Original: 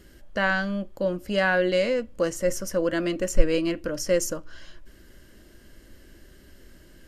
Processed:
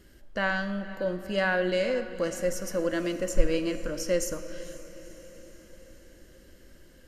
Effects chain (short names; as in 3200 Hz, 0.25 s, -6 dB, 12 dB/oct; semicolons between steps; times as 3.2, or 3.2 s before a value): diffused feedback echo 0.482 s, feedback 57%, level -15.5 dB; on a send at -11 dB: reverb RT60 1.3 s, pre-delay 10 ms; on the sum: gain -4 dB